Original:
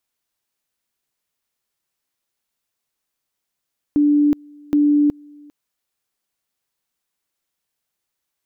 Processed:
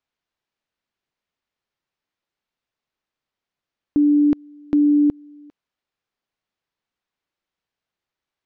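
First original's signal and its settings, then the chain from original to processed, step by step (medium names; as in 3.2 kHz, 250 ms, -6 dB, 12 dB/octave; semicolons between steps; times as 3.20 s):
two-level tone 293 Hz -11.5 dBFS, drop 28.5 dB, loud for 0.37 s, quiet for 0.40 s, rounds 2
distance through air 170 m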